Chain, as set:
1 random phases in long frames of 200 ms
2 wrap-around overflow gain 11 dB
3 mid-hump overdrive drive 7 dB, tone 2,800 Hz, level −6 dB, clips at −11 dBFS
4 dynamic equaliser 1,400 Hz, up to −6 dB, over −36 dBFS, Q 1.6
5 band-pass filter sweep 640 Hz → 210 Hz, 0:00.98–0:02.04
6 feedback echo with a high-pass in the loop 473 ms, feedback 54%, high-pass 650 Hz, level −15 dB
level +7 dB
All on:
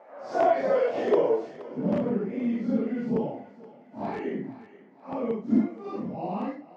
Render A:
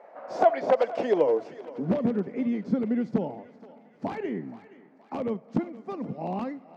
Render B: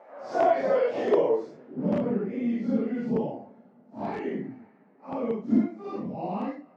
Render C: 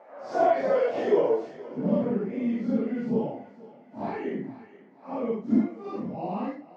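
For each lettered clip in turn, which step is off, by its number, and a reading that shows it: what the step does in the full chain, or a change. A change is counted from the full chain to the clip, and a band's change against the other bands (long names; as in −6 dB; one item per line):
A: 1, change in crest factor +2.5 dB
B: 6, change in momentary loudness spread −1 LU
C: 2, distortion level −10 dB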